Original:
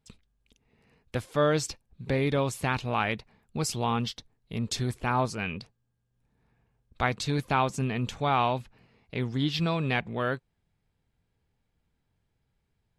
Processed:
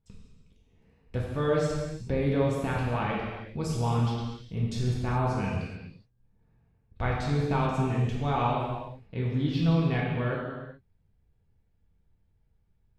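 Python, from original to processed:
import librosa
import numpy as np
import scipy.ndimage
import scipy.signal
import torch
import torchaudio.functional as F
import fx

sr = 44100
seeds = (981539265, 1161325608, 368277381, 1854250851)

y = fx.tilt_eq(x, sr, slope=-2.5)
y = fx.rev_gated(y, sr, seeds[0], gate_ms=450, shape='falling', drr_db=-4.5)
y = y * 10.0 ** (-8.0 / 20.0)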